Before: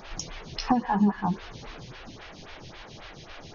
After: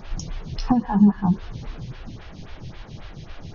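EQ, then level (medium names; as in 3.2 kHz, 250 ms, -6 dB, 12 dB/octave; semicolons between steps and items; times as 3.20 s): dynamic bell 2.2 kHz, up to -5 dB, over -49 dBFS, Q 1.8; tone controls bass +13 dB, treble -2 dB; -1.0 dB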